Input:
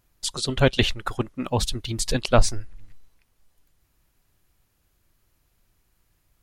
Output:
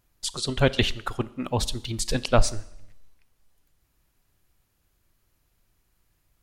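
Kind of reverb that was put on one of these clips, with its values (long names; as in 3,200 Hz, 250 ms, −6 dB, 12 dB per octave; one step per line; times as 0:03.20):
four-comb reverb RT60 0.75 s, combs from 28 ms, DRR 17.5 dB
level −2 dB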